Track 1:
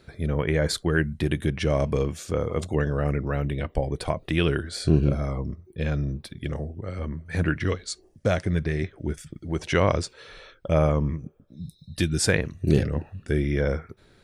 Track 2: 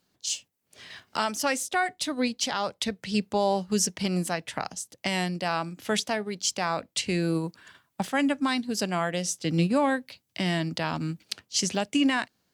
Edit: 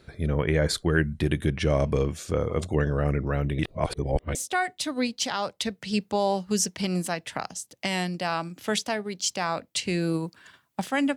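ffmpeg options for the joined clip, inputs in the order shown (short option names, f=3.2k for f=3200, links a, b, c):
-filter_complex "[0:a]apad=whole_dur=11.16,atrim=end=11.16,asplit=2[a][b];[a]atrim=end=3.592[c];[b]atrim=start=3.588:end=4.352,asetpts=PTS-STARTPTS,areverse[d];[1:a]atrim=start=1.558:end=8.37[e];[c][d]acrossfade=d=0.004:c1=hsin:c2=hsin[f];[f][e]acrossfade=d=0.004:c1=hsin:c2=hsin"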